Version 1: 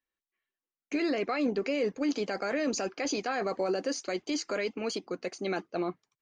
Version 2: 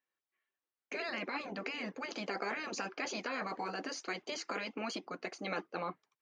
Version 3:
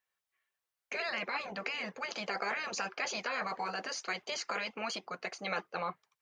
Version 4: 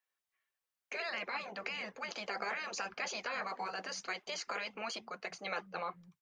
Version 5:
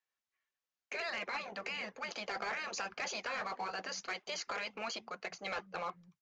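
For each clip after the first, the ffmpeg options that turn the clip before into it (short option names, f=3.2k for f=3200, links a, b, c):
-af "highpass=f=640:p=1,afftfilt=real='re*lt(hypot(re,im),0.0794)':imag='im*lt(hypot(re,im),0.0794)':win_size=1024:overlap=0.75,lowpass=f=1.6k:p=1,volume=5dB"
-af "equalizer=f=290:w=1.8:g=-15,volume=4dB"
-filter_complex "[0:a]acrossover=split=180[a][b];[a]adelay=190[c];[c][b]amix=inputs=2:normalize=0,volume=-3dB"
-af "asoftclip=type=tanh:threshold=-36.5dB,aeval=exprs='0.0316*(cos(1*acos(clip(val(0)/0.0316,-1,1)))-cos(1*PI/2))+0.00251*(cos(7*acos(clip(val(0)/0.0316,-1,1)))-cos(7*PI/2))':c=same,aresample=16000,aresample=44100,volume=4.5dB"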